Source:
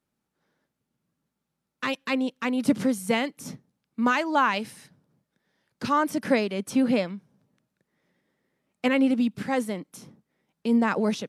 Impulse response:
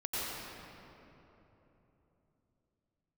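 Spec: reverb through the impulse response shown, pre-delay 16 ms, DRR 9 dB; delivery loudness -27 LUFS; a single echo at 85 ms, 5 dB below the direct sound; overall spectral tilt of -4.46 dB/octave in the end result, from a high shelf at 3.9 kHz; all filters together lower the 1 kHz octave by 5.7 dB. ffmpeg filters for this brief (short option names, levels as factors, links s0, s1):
-filter_complex "[0:a]equalizer=f=1000:t=o:g=-6.5,highshelf=f=3900:g=-6.5,aecho=1:1:85:0.562,asplit=2[s0][s1];[1:a]atrim=start_sample=2205,adelay=16[s2];[s1][s2]afir=irnorm=-1:irlink=0,volume=0.178[s3];[s0][s3]amix=inputs=2:normalize=0,volume=0.891"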